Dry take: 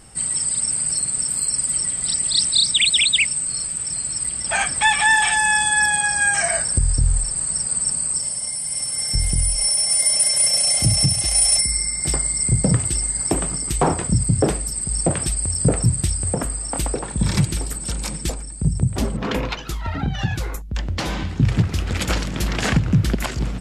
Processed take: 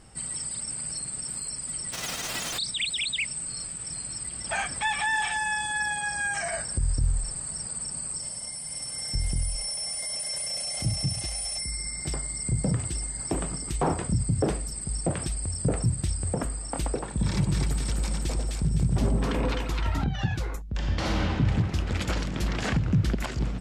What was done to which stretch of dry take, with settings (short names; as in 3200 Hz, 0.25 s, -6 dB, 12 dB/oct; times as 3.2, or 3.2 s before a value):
1.92–2.57 spectral whitening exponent 0.1
17.26–20.04 split-band echo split 1000 Hz, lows 96 ms, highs 0.256 s, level -3.5 dB
20.7–21.31 reverb throw, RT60 2.4 s, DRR -3 dB
whole clip: bell 5600 Hz +6 dB 2.1 oct; limiter -10 dBFS; high shelf 2900 Hz -11.5 dB; gain -4.5 dB